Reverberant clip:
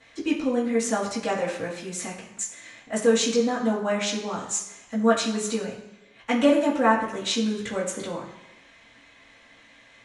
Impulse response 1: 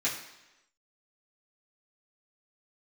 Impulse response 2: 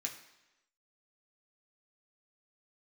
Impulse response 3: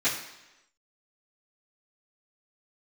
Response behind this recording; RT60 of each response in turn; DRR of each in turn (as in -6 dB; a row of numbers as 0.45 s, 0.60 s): 1; 1.0 s, 1.0 s, 1.0 s; -10.0 dB, -0.5 dB, -16.0 dB